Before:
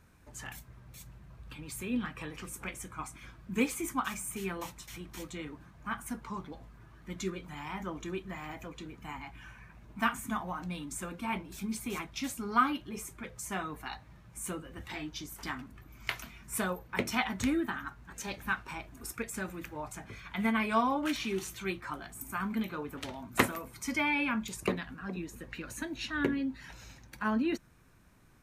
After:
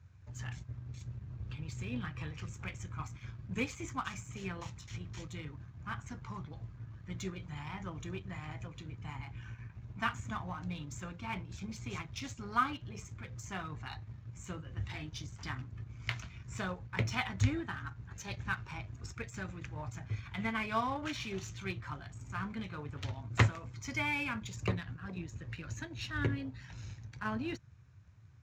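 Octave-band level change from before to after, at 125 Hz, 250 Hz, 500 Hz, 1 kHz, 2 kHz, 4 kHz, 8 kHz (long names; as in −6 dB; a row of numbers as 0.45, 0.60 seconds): +7.5, −7.0, −6.5, −4.5, −3.5, −3.5, −8.0 decibels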